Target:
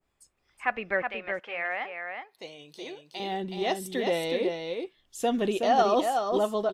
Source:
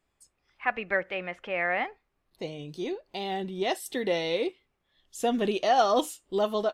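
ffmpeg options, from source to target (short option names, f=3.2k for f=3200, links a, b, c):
-filter_complex "[0:a]asettb=1/sr,asplit=3[a][b][c];[a]atrim=end=1.024[d];[b]atrim=start=1.02:end=3.2,asetpts=PTS-STARTPTS,afade=t=in:d=0.004:c=qsin,afade=t=out:st=2.176:d=0.004:c=qsin,highpass=f=1k:p=1[e];[c]atrim=start=3.196[f];[d][e]acrossfade=d=0.004:c1=hsin:c2=qsin[g];[g][f]acrossfade=d=0.004:c1=qsin:c2=hsin,aecho=1:1:371:0.562,adynamicequalizer=threshold=0.0112:dfrequency=1700:dqfactor=0.7:tfrequency=1700:tqfactor=0.7:attack=5:release=100:ratio=0.375:range=2.5:mode=cutabove:tftype=highshelf"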